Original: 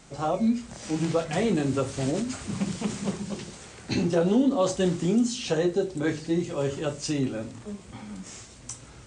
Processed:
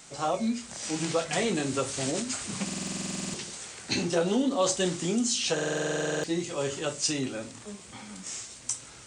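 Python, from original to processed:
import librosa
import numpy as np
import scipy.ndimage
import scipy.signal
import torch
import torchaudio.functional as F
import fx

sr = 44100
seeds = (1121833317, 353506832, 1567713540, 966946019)

y = fx.tilt_eq(x, sr, slope=2.5)
y = fx.buffer_glitch(y, sr, at_s=(2.64, 5.54), block=2048, repeats=14)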